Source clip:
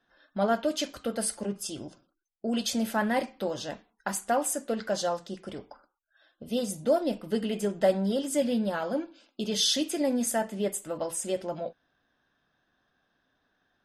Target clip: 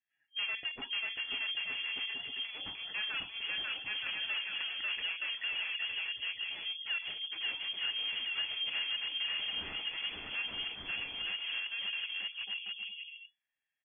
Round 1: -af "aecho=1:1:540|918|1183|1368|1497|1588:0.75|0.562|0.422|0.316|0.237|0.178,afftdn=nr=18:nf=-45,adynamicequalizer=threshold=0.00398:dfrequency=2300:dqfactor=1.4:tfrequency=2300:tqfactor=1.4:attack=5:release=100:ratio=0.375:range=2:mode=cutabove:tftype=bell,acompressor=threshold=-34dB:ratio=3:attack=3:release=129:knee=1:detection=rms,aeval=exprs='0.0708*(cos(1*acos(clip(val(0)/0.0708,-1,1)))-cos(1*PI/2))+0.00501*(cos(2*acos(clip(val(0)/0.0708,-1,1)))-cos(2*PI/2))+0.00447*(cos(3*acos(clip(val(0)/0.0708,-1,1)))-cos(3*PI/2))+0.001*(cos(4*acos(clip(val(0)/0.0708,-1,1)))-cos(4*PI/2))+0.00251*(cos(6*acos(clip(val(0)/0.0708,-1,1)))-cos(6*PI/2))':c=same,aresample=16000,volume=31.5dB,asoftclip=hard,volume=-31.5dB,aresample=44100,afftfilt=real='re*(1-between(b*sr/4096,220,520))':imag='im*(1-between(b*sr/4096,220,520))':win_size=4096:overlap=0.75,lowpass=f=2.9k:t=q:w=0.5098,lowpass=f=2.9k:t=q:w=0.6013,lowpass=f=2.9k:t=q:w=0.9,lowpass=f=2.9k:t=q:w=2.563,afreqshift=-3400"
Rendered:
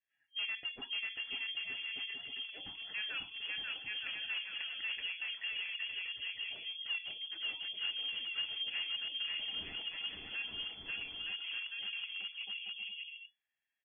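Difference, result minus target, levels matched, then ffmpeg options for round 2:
compressor: peak gain reduction +5.5 dB
-af "aecho=1:1:540|918|1183|1368|1497|1588:0.75|0.562|0.422|0.316|0.237|0.178,afftdn=nr=18:nf=-45,adynamicequalizer=threshold=0.00398:dfrequency=2300:dqfactor=1.4:tfrequency=2300:tqfactor=1.4:attack=5:release=100:ratio=0.375:range=2:mode=cutabove:tftype=bell,acompressor=threshold=-25.5dB:ratio=3:attack=3:release=129:knee=1:detection=rms,aeval=exprs='0.0708*(cos(1*acos(clip(val(0)/0.0708,-1,1)))-cos(1*PI/2))+0.00501*(cos(2*acos(clip(val(0)/0.0708,-1,1)))-cos(2*PI/2))+0.00447*(cos(3*acos(clip(val(0)/0.0708,-1,1)))-cos(3*PI/2))+0.001*(cos(4*acos(clip(val(0)/0.0708,-1,1)))-cos(4*PI/2))+0.00251*(cos(6*acos(clip(val(0)/0.0708,-1,1)))-cos(6*PI/2))':c=same,aresample=16000,volume=31.5dB,asoftclip=hard,volume=-31.5dB,aresample=44100,afftfilt=real='re*(1-between(b*sr/4096,220,520))':imag='im*(1-between(b*sr/4096,220,520))':win_size=4096:overlap=0.75,lowpass=f=2.9k:t=q:w=0.5098,lowpass=f=2.9k:t=q:w=0.6013,lowpass=f=2.9k:t=q:w=0.9,lowpass=f=2.9k:t=q:w=2.563,afreqshift=-3400"

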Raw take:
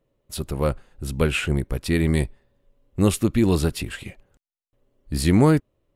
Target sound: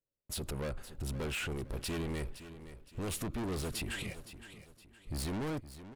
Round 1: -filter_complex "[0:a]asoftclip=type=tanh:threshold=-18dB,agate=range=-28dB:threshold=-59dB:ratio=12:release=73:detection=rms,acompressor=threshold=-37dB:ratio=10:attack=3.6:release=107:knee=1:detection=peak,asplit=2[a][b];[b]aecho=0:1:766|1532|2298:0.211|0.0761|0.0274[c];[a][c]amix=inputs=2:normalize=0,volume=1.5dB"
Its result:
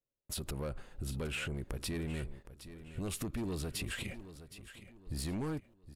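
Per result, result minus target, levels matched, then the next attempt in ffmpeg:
echo 0.251 s late; soft clip: distortion -6 dB
-filter_complex "[0:a]asoftclip=type=tanh:threshold=-18dB,agate=range=-28dB:threshold=-59dB:ratio=12:release=73:detection=rms,acompressor=threshold=-37dB:ratio=10:attack=3.6:release=107:knee=1:detection=peak,asplit=2[a][b];[b]aecho=0:1:515|1030|1545:0.211|0.0761|0.0274[c];[a][c]amix=inputs=2:normalize=0,volume=1.5dB"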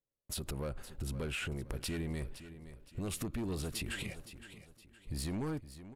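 soft clip: distortion -6 dB
-filter_complex "[0:a]asoftclip=type=tanh:threshold=-29.5dB,agate=range=-28dB:threshold=-59dB:ratio=12:release=73:detection=rms,acompressor=threshold=-37dB:ratio=10:attack=3.6:release=107:knee=1:detection=peak,asplit=2[a][b];[b]aecho=0:1:515|1030|1545:0.211|0.0761|0.0274[c];[a][c]amix=inputs=2:normalize=0,volume=1.5dB"

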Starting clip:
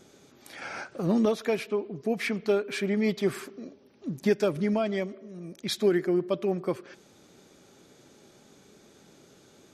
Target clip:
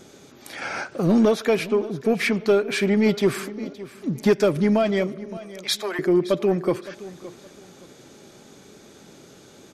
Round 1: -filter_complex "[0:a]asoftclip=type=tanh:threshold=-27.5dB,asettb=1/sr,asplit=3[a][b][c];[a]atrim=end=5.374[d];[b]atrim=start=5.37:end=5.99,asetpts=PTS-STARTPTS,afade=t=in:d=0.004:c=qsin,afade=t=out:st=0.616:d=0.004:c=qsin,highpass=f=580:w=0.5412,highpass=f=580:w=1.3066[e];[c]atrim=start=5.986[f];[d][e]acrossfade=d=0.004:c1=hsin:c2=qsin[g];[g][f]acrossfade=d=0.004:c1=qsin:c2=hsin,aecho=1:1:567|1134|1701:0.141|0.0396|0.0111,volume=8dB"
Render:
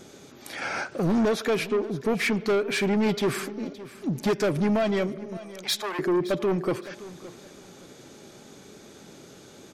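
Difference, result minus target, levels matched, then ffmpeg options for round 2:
soft clip: distortion +11 dB
-filter_complex "[0:a]asoftclip=type=tanh:threshold=-17dB,asettb=1/sr,asplit=3[a][b][c];[a]atrim=end=5.374[d];[b]atrim=start=5.37:end=5.99,asetpts=PTS-STARTPTS,afade=t=in:d=0.004:c=qsin,afade=t=out:st=0.616:d=0.004:c=qsin,highpass=f=580:w=0.5412,highpass=f=580:w=1.3066[e];[c]atrim=start=5.986[f];[d][e]acrossfade=d=0.004:c1=hsin:c2=qsin[g];[g][f]acrossfade=d=0.004:c1=qsin:c2=hsin,aecho=1:1:567|1134|1701:0.141|0.0396|0.0111,volume=8dB"

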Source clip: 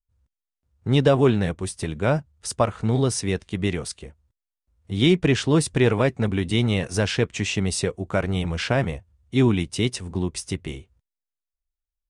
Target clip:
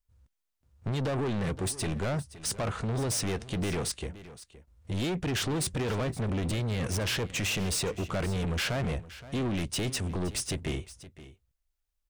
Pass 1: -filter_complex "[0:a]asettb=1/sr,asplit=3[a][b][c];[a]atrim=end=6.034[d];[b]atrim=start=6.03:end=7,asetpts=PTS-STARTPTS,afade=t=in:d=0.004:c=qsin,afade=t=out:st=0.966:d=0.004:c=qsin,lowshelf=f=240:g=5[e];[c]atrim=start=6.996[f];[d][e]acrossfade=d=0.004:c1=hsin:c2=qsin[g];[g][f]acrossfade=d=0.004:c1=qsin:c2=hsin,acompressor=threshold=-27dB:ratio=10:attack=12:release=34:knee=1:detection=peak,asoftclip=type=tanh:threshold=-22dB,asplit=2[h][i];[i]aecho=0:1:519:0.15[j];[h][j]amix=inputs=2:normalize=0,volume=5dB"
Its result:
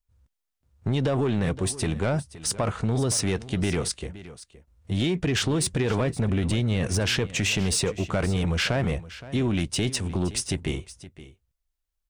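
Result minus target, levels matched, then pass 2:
soft clip: distortion -10 dB
-filter_complex "[0:a]asettb=1/sr,asplit=3[a][b][c];[a]atrim=end=6.034[d];[b]atrim=start=6.03:end=7,asetpts=PTS-STARTPTS,afade=t=in:d=0.004:c=qsin,afade=t=out:st=0.966:d=0.004:c=qsin,lowshelf=f=240:g=5[e];[c]atrim=start=6.996[f];[d][e]acrossfade=d=0.004:c1=hsin:c2=qsin[g];[g][f]acrossfade=d=0.004:c1=qsin:c2=hsin,acompressor=threshold=-27dB:ratio=10:attack=12:release=34:knee=1:detection=peak,asoftclip=type=tanh:threshold=-32.5dB,asplit=2[h][i];[i]aecho=0:1:519:0.15[j];[h][j]amix=inputs=2:normalize=0,volume=5dB"

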